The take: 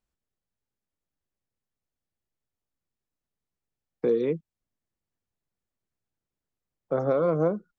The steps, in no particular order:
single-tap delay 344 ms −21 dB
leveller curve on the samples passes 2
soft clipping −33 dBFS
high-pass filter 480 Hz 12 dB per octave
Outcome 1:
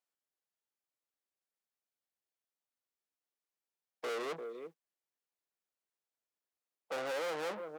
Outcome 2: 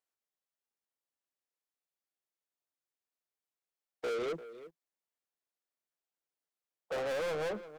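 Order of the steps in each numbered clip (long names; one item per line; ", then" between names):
single-tap delay, then soft clipping, then leveller curve on the samples, then high-pass filter
high-pass filter, then soft clipping, then single-tap delay, then leveller curve on the samples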